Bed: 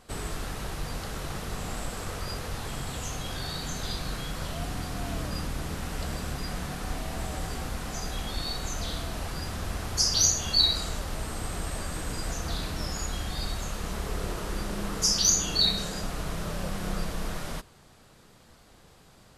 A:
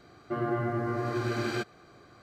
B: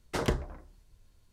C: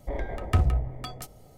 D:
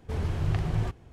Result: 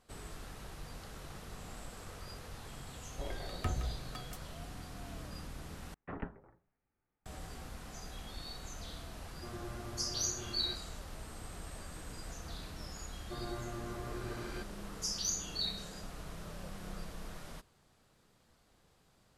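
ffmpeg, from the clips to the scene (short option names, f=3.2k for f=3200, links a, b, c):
-filter_complex "[1:a]asplit=2[a][b];[0:a]volume=-13dB[c];[3:a]equalizer=f=84:w=1.5:g=-6.5[d];[2:a]highpass=f=170:t=q:w=0.5412,highpass=f=170:t=q:w=1.307,lowpass=f=2.4k:t=q:w=0.5176,lowpass=f=2.4k:t=q:w=0.7071,lowpass=f=2.4k:t=q:w=1.932,afreqshift=-190[e];[c]asplit=2[f][g];[f]atrim=end=5.944[h];[e]atrim=end=1.32,asetpts=PTS-STARTPTS,volume=-10.5dB[i];[g]atrim=start=7.256[j];[d]atrim=end=1.57,asetpts=PTS-STARTPTS,volume=-9.5dB,afade=t=in:d=0.004:c=hsin,afade=t=out:st=1.566:d=0.004:c=hsin,adelay=3110[k];[a]atrim=end=2.22,asetpts=PTS-STARTPTS,volume=-17dB,afade=t=in:d=0.004:c=hsin,afade=t=out:st=2.216:d=0.004:c=hsin,adelay=9120[l];[b]atrim=end=2.22,asetpts=PTS-STARTPTS,volume=-13dB,afade=t=in:d=0.004:c=hsin,afade=t=out:st=2.216:d=0.004:c=hsin,adelay=573300S[m];[h][i]acrossfade=d=0.004:c1=hsin:c2=hsin[n];[n][j]acrossfade=d=0.004:c1=hsin:c2=hsin[o];[o][k][l][m]amix=inputs=4:normalize=0"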